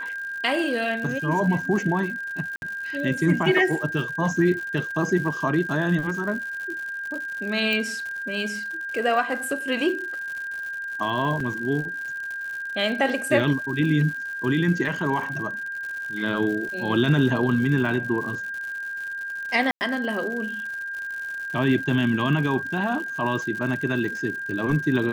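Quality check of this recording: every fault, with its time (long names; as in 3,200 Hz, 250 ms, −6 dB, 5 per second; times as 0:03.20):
surface crackle 130 per second −32 dBFS
whistle 1,600 Hz −29 dBFS
0:02.56–0:02.62: drop-out 61 ms
0:07.73: click −13 dBFS
0:11.40: drop-out 3.8 ms
0:19.71–0:19.81: drop-out 99 ms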